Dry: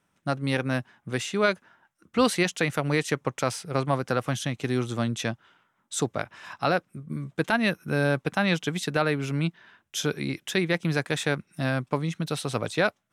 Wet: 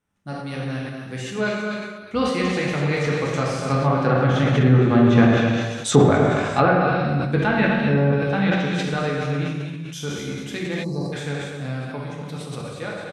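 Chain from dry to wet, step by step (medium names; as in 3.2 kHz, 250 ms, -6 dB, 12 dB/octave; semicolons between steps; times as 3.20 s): Doppler pass-by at 5.56 s, 5 m/s, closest 3.3 m; bass shelf 150 Hz +9.5 dB; on a send: delay 245 ms -7 dB; on the sum: gated-style reverb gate 490 ms falling, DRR -3.5 dB; time-frequency box 10.84–11.13 s, 1.2–3.9 kHz -27 dB; low-pass that closes with the level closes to 1.9 kHz, closed at -21.5 dBFS; decay stretcher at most 42 dB/s; trim +8.5 dB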